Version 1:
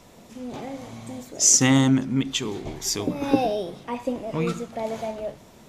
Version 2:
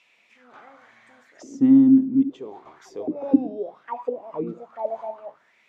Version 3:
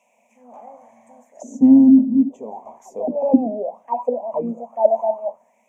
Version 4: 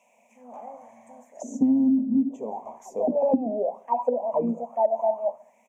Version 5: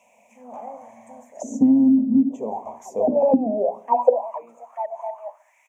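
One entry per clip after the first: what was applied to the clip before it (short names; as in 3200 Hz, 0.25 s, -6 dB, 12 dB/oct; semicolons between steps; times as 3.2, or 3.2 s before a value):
auto-wah 270–2700 Hz, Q 6, down, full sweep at -20 dBFS; gain +6.5 dB
EQ curve 100 Hz 0 dB, 150 Hz -6 dB, 230 Hz +14 dB, 330 Hz -9 dB, 600 Hz +15 dB, 980 Hz +8 dB, 1400 Hz -21 dB, 2400 Hz -5 dB, 4400 Hz -24 dB, 6400 Hz +8 dB; gain -1 dB
feedback echo 69 ms, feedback 48%, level -22.5 dB; compressor 10:1, threshold -18 dBFS, peak gain reduction 12 dB
high-pass sweep 77 Hz -> 1500 Hz, 3.65–4.3; notches 60/120/180/240/300/360/420 Hz; gain +4.5 dB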